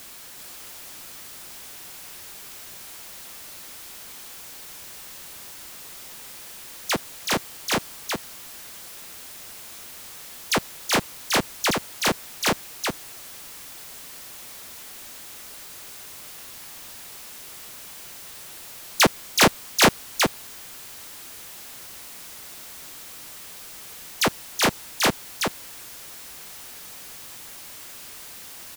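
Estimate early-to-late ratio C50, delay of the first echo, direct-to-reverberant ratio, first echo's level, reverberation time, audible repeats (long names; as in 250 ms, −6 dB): no reverb audible, 377 ms, no reverb audible, −4.0 dB, no reverb audible, 1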